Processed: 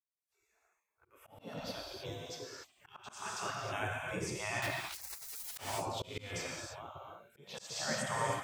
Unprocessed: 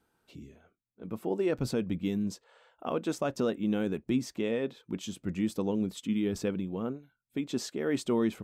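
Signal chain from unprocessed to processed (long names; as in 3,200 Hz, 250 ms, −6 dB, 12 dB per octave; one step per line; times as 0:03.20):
fade in at the beginning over 2.59 s
pitch vibrato 8.9 Hz 16 cents
phaser swept by the level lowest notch 520 Hz, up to 4,100 Hz, full sweep at −26 dBFS
0:03.13–0:03.79: low-shelf EQ 400 Hz −4.5 dB
0:04.62–0:05.50: wrap-around overflow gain 37 dB
0:06.46–0:07.46: downward compressor 10 to 1, threshold −35 dBFS, peak gain reduction 9 dB
harmonic and percussive parts rebalanced percussive −12 dB
high-pass filter 190 Hz 6 dB per octave
reverb whose tail is shaped and stops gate 340 ms flat, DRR −2.5 dB
gate on every frequency bin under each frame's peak −20 dB weak
volume swells 192 ms
level +12 dB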